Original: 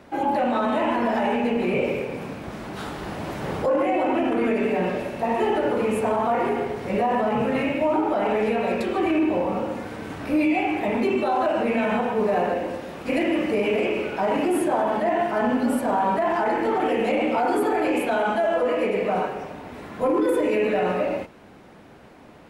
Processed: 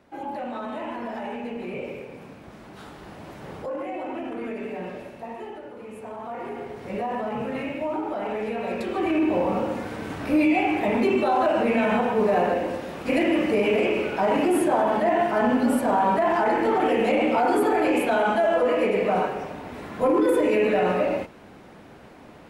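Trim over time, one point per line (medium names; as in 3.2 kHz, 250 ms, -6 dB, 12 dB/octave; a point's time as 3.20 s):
5.08 s -10 dB
5.72 s -18.5 dB
6.86 s -6.5 dB
8.48 s -6.5 dB
9.46 s +1 dB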